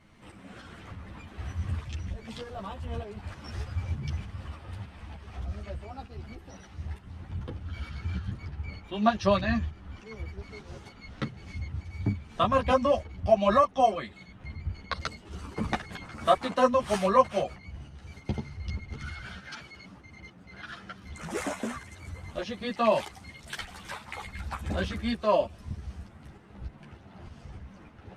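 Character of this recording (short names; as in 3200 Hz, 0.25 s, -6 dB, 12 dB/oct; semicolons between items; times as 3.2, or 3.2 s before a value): tremolo saw up 3.3 Hz, depth 45%; a shimmering, thickened sound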